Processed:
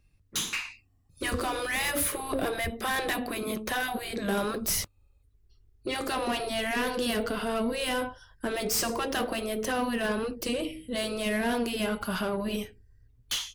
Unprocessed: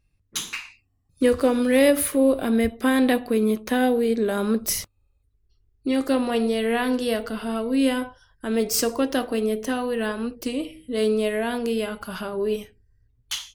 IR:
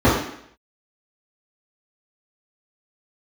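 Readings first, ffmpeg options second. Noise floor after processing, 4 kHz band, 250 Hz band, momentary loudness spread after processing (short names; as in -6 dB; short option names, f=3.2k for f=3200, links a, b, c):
-65 dBFS, -0.5 dB, -10.0 dB, 6 LU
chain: -filter_complex "[0:a]afftfilt=real='re*lt(hypot(re,im),0.398)':imag='im*lt(hypot(re,im),0.398)':win_size=1024:overlap=0.75,acrossover=split=290[a][b];[b]asoftclip=type=tanh:threshold=-27.5dB[c];[a][c]amix=inputs=2:normalize=0,volume=3dB"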